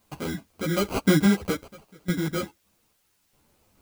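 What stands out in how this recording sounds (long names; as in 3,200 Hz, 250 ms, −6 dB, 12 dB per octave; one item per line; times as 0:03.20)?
aliases and images of a low sample rate 1,800 Hz, jitter 0%
sample-and-hold tremolo 2.4 Hz, depth 95%
a quantiser's noise floor 12 bits, dither triangular
a shimmering, thickened sound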